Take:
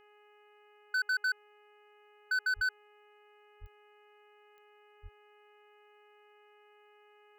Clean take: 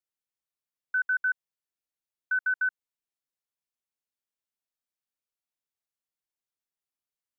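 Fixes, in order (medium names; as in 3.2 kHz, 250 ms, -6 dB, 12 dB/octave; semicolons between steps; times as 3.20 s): clip repair -28 dBFS; de-click; de-hum 417.1 Hz, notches 7; 2.55–2.67 s: high-pass 140 Hz 24 dB/octave; 3.60–3.72 s: high-pass 140 Hz 24 dB/octave; 5.02–5.14 s: high-pass 140 Hz 24 dB/octave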